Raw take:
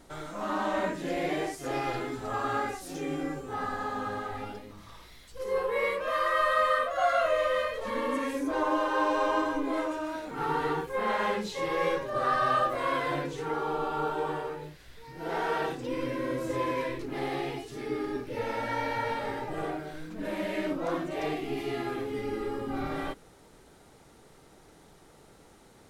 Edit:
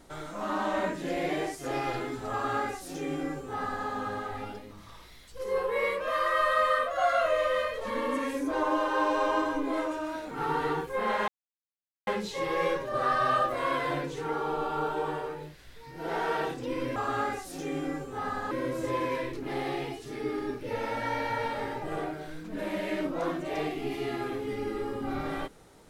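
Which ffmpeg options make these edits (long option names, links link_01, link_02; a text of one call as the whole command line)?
ffmpeg -i in.wav -filter_complex "[0:a]asplit=4[link_01][link_02][link_03][link_04];[link_01]atrim=end=11.28,asetpts=PTS-STARTPTS,afade=type=out:start_time=11.276:duration=0.004:curve=hsin,apad=pad_dur=0.79[link_05];[link_02]atrim=start=11.28:end=16.172,asetpts=PTS-STARTPTS,afade=type=in:duration=0.004:curve=hsin[link_06];[link_03]atrim=start=2.318:end=3.872[link_07];[link_04]atrim=start=16.168[link_08];[link_05][link_06]concat=n=2:v=0:a=1[link_09];[link_09][link_07]acrossfade=duration=0.004:curve1=hsin:curve2=hsin[link_10];[link_10][link_08]acrossfade=duration=0.004:curve1=hsin:curve2=hsin" out.wav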